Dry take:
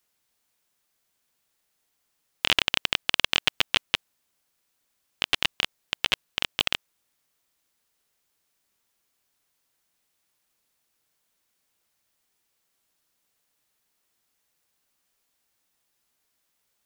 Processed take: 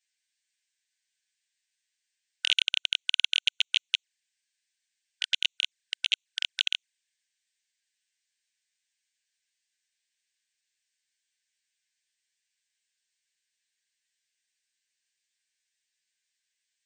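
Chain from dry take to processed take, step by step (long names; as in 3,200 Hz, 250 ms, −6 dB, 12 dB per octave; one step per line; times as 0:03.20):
flanger swept by the level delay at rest 10.2 ms, full sweep at −28 dBFS
linear-phase brick-wall band-pass 1,500–9,000 Hz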